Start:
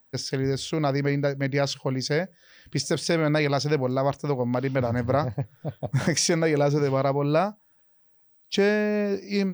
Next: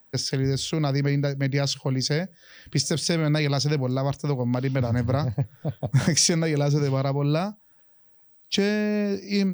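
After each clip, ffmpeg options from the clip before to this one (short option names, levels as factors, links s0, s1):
-filter_complex "[0:a]acrossover=split=230|3000[s0][s1][s2];[s1]acompressor=threshold=0.0126:ratio=2[s3];[s0][s3][s2]amix=inputs=3:normalize=0,volume=1.68"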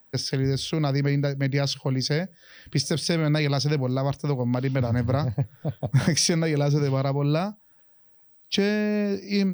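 -af "equalizer=f=7100:w=5.6:g=-15"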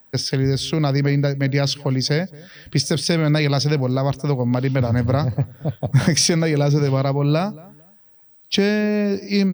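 -filter_complex "[0:a]asplit=2[s0][s1];[s1]adelay=226,lowpass=f=1100:p=1,volume=0.0891,asplit=2[s2][s3];[s3]adelay=226,lowpass=f=1100:p=1,volume=0.27[s4];[s0][s2][s4]amix=inputs=3:normalize=0,volume=1.78"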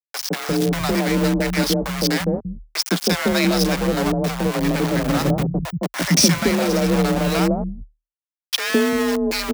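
-filter_complex "[0:a]aeval=exprs='val(0)*gte(abs(val(0)),0.106)':c=same,afreqshift=38,acrossover=split=160|710[s0][s1][s2];[s1]adelay=160[s3];[s0]adelay=340[s4];[s4][s3][s2]amix=inputs=3:normalize=0,volume=1.26"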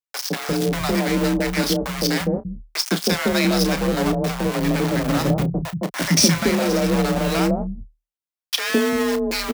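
-filter_complex "[0:a]asplit=2[s0][s1];[s1]adelay=31,volume=0.266[s2];[s0][s2]amix=inputs=2:normalize=0,volume=0.891"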